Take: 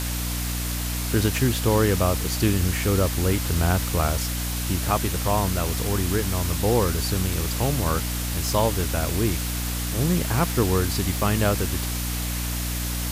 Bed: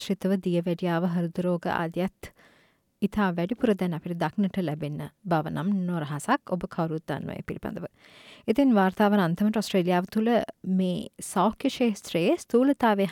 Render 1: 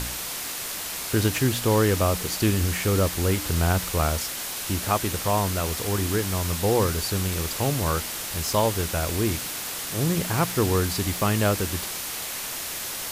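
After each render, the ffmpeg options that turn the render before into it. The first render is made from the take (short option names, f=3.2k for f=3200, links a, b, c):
-af "bandreject=f=60:t=h:w=4,bandreject=f=120:t=h:w=4,bandreject=f=180:t=h:w=4,bandreject=f=240:t=h:w=4,bandreject=f=300:t=h:w=4"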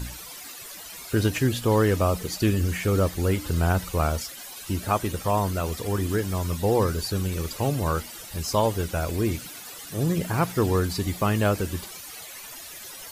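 -af "afftdn=nr=14:nf=-33"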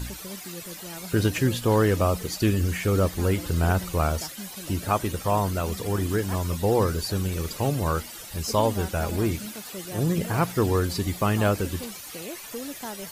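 -filter_complex "[1:a]volume=-15dB[a];[0:a][a]amix=inputs=2:normalize=0"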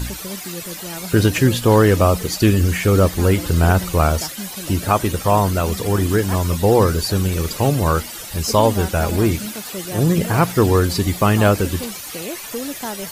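-af "volume=8dB,alimiter=limit=-3dB:level=0:latency=1"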